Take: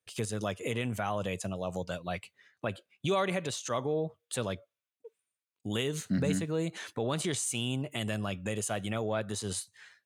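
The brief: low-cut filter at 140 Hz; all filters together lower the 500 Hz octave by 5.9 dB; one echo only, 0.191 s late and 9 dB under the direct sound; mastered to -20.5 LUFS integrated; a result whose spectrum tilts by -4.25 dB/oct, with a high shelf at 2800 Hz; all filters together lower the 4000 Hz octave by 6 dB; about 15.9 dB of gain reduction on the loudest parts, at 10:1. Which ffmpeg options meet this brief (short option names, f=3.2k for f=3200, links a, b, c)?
-af "highpass=140,equalizer=f=500:t=o:g=-7,highshelf=f=2.8k:g=-4,equalizer=f=4k:t=o:g=-5,acompressor=threshold=-44dB:ratio=10,aecho=1:1:191:0.355,volume=27.5dB"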